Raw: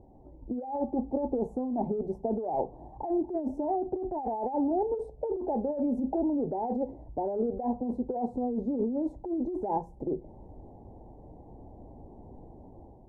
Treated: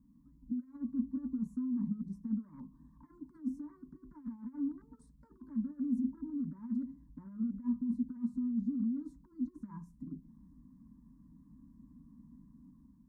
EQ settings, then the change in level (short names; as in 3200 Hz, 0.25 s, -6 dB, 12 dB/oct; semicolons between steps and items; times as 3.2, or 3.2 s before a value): HPF 160 Hz 6 dB/oct; inverse Chebyshev band-stop 400–830 Hz, stop band 40 dB; fixed phaser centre 510 Hz, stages 8; +1.5 dB